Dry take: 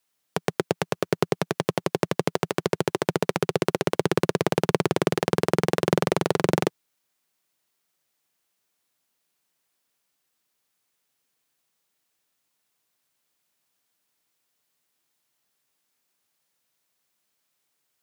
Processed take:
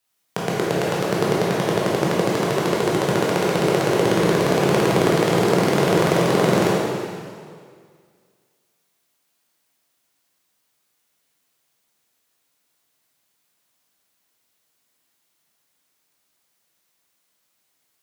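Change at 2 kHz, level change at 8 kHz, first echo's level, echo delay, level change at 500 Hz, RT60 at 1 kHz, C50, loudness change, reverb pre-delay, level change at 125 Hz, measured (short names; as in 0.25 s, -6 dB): +6.0 dB, +6.0 dB, none, none, +6.0 dB, 2.0 s, -2.5 dB, +6.0 dB, 7 ms, +6.0 dB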